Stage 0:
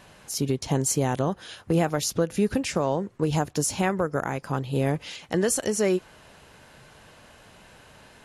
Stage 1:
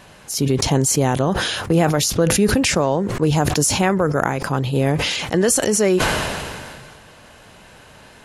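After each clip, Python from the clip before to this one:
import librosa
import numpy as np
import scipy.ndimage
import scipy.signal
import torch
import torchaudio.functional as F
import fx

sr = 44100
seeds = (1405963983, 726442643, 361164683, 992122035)

y = fx.sustainer(x, sr, db_per_s=28.0)
y = y * librosa.db_to_amplitude(6.0)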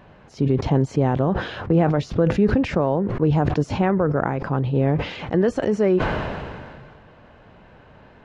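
y = fx.spacing_loss(x, sr, db_at_10k=41)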